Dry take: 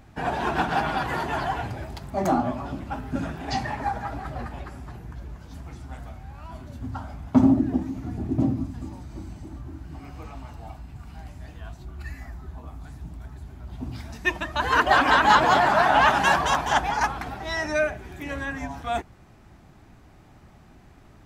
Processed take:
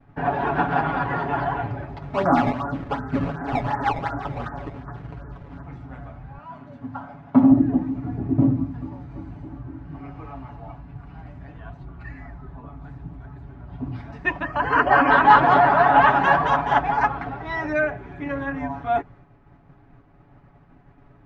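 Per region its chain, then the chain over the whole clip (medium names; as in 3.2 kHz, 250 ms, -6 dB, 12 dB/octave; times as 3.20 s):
2.02–5.63 s: resonant high shelf 2.2 kHz -13.5 dB, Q 3 + decimation with a swept rate 17×, swing 160% 2.7 Hz
6.38–7.51 s: high-pass 180 Hz + peaking EQ 350 Hz -13 dB 0.24 oct
14.44–15.10 s: Butterworth band-stop 3.7 kHz, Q 3.4 + tape noise reduction on one side only encoder only
whole clip: comb 7.1 ms, depth 63%; expander -45 dBFS; low-pass 1.8 kHz 12 dB/octave; trim +2 dB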